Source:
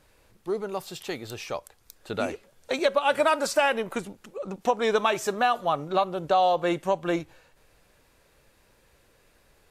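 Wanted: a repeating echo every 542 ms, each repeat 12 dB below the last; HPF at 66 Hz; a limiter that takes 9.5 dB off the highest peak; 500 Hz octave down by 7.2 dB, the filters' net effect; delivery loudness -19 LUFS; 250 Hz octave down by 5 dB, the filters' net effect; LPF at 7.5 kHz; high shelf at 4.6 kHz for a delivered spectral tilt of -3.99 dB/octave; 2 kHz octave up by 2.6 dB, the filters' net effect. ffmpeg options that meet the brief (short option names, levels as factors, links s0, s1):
-af "highpass=66,lowpass=7500,equalizer=f=250:t=o:g=-3.5,equalizer=f=500:t=o:g=-8.5,equalizer=f=2000:t=o:g=5.5,highshelf=f=4600:g=-7,alimiter=limit=0.106:level=0:latency=1,aecho=1:1:542|1084|1626:0.251|0.0628|0.0157,volume=4.73"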